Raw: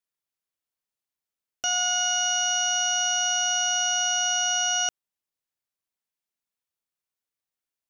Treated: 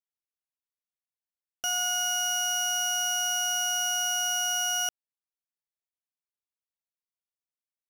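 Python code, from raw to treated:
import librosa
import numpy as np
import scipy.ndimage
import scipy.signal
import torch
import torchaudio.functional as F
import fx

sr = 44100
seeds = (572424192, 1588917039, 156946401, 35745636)

y = fx.leveller(x, sr, passes=3)
y = y * 10.0 ** (-7.5 / 20.0)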